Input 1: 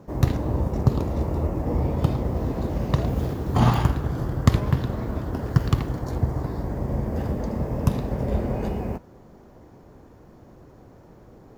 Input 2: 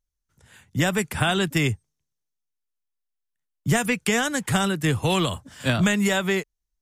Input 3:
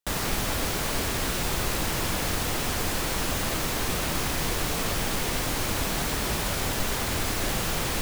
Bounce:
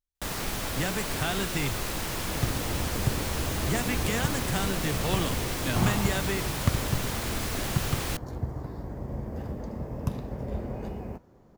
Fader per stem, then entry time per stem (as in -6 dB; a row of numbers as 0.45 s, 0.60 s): -8.5 dB, -9.0 dB, -4.5 dB; 2.20 s, 0.00 s, 0.15 s